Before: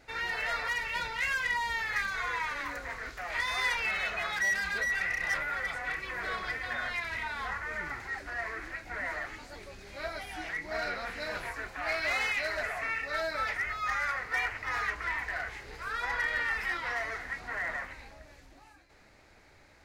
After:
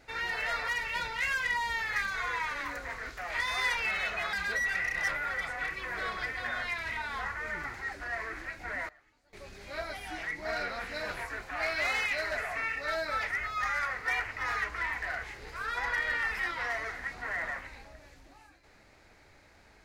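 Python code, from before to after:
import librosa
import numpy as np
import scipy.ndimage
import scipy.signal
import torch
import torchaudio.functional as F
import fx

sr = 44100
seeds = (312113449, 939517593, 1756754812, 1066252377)

y = fx.edit(x, sr, fx.cut(start_s=4.33, length_s=0.26),
    fx.fade_down_up(start_s=8.91, length_s=0.92, db=-23.5, fade_s=0.24, curve='log'), tone=tone)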